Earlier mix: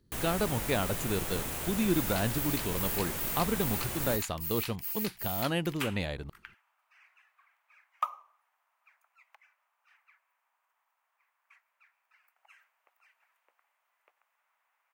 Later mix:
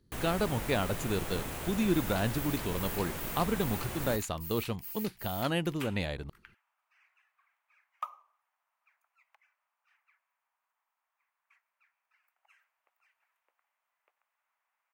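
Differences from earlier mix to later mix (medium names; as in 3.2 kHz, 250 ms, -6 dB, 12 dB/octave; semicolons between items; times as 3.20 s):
first sound: add treble shelf 4.1 kHz -7 dB; second sound -6.5 dB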